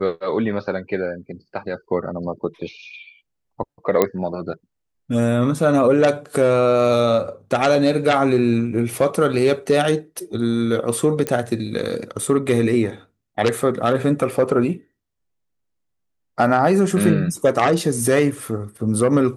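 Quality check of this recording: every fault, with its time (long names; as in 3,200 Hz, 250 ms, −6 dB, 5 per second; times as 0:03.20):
0:04.02: click −3 dBFS
0:11.27: click −9 dBFS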